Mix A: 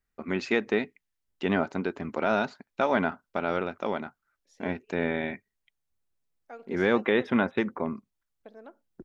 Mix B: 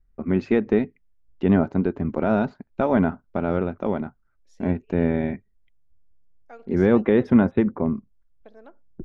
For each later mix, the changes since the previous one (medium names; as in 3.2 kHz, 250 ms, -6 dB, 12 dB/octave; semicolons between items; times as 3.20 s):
first voice: add tilt EQ -4.5 dB/octave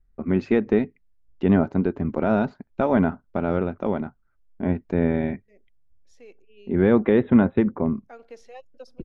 second voice: entry +1.60 s